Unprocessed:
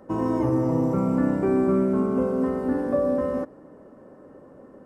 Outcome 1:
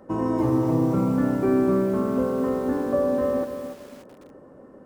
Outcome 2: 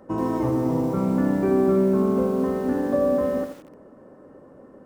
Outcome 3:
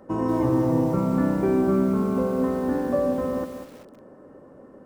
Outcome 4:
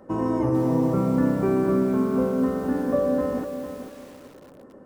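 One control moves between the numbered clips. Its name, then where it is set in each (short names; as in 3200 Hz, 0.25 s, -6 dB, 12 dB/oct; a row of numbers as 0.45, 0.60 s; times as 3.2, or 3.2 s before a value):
lo-fi delay, time: 289, 83, 193, 451 ms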